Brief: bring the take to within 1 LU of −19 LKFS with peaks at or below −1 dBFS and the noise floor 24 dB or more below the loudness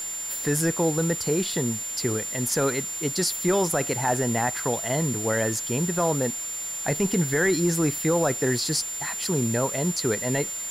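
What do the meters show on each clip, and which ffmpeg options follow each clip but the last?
interfering tone 7,200 Hz; level of the tone −30 dBFS; background noise floor −33 dBFS; target noise floor −49 dBFS; integrated loudness −24.5 LKFS; sample peak −12.5 dBFS; target loudness −19.0 LKFS
→ -af "bandreject=frequency=7200:width=30"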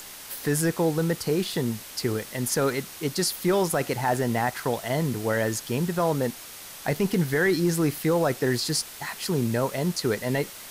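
interfering tone none found; background noise floor −42 dBFS; target noise floor −50 dBFS
→ -af "afftdn=noise_reduction=8:noise_floor=-42"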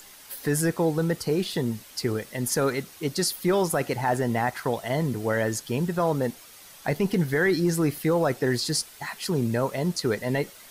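background noise floor −48 dBFS; target noise floor −50 dBFS
→ -af "afftdn=noise_reduction=6:noise_floor=-48"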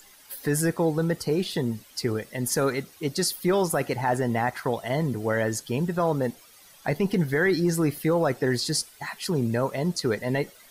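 background noise floor −53 dBFS; integrated loudness −26.0 LKFS; sample peak −14.0 dBFS; target loudness −19.0 LKFS
→ -af "volume=7dB"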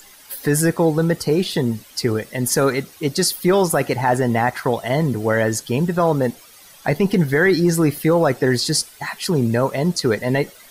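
integrated loudness −19.0 LKFS; sample peak −7.0 dBFS; background noise floor −46 dBFS

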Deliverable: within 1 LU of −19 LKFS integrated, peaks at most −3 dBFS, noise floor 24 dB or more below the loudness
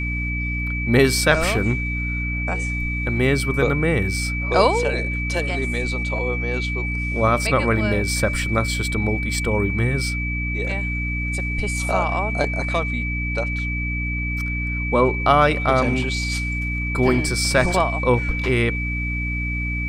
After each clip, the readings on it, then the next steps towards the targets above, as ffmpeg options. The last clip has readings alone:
mains hum 60 Hz; hum harmonics up to 300 Hz; level of the hum −23 dBFS; interfering tone 2,300 Hz; level of the tone −26 dBFS; integrated loudness −21.0 LKFS; sample peak −1.5 dBFS; target loudness −19.0 LKFS
→ -af "bandreject=frequency=60:width_type=h:width=4,bandreject=frequency=120:width_type=h:width=4,bandreject=frequency=180:width_type=h:width=4,bandreject=frequency=240:width_type=h:width=4,bandreject=frequency=300:width_type=h:width=4"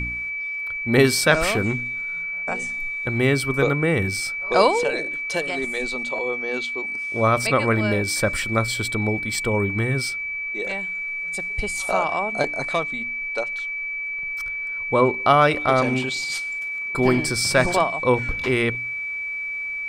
mains hum none found; interfering tone 2,300 Hz; level of the tone −26 dBFS
→ -af "bandreject=frequency=2300:width=30"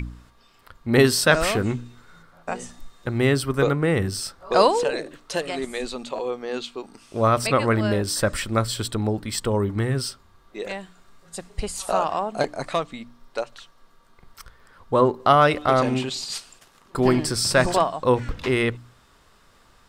interfering tone none found; integrated loudness −23.0 LKFS; sample peak −2.0 dBFS; target loudness −19.0 LKFS
→ -af "volume=4dB,alimiter=limit=-3dB:level=0:latency=1"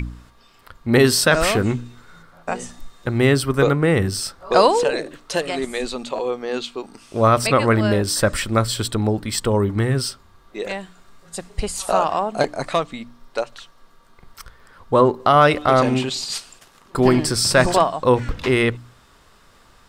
integrated loudness −19.5 LKFS; sample peak −3.0 dBFS; background noise floor −52 dBFS

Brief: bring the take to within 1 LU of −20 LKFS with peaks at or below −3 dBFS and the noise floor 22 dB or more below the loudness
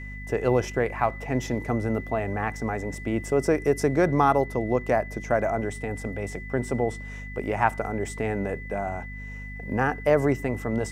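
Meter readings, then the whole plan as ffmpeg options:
mains hum 50 Hz; hum harmonics up to 250 Hz; level of the hum −36 dBFS; interfering tone 2,000 Hz; level of the tone −40 dBFS; integrated loudness −26.5 LKFS; sample peak −5.5 dBFS; target loudness −20.0 LKFS
→ -af "bandreject=frequency=50:width_type=h:width=4,bandreject=frequency=100:width_type=h:width=4,bandreject=frequency=150:width_type=h:width=4,bandreject=frequency=200:width_type=h:width=4,bandreject=frequency=250:width_type=h:width=4"
-af "bandreject=frequency=2000:width=30"
-af "volume=6.5dB,alimiter=limit=-3dB:level=0:latency=1"

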